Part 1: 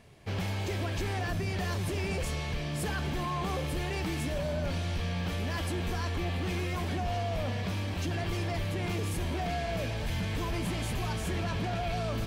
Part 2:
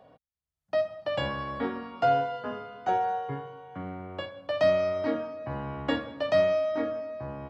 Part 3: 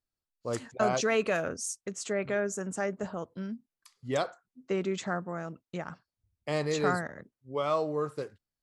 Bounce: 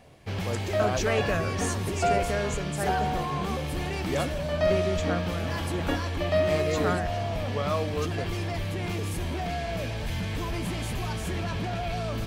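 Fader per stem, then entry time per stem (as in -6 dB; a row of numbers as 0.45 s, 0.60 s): +1.5 dB, -2.0 dB, -0.5 dB; 0.00 s, 0.00 s, 0.00 s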